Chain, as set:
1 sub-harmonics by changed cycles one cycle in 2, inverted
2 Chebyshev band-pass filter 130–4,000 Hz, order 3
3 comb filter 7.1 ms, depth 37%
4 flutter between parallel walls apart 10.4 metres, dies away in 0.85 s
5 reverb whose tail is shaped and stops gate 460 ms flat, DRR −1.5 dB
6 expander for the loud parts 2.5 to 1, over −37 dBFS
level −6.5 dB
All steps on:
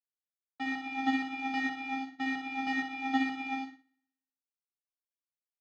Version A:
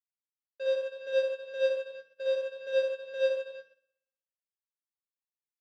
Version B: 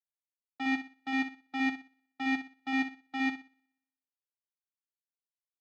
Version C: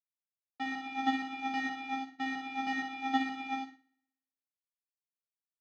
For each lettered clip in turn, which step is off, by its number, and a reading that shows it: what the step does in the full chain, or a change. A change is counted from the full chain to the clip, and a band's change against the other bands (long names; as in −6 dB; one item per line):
1, change in crest factor −3.0 dB
5, change in crest factor −2.5 dB
3, 1 kHz band +3.0 dB